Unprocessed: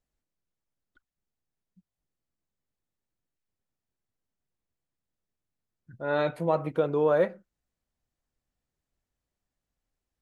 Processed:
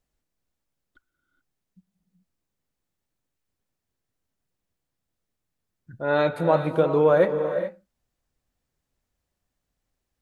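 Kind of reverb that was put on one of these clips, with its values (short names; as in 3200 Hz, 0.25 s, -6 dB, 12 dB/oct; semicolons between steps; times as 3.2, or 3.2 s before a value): non-linear reverb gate 0.45 s rising, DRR 8 dB; gain +5 dB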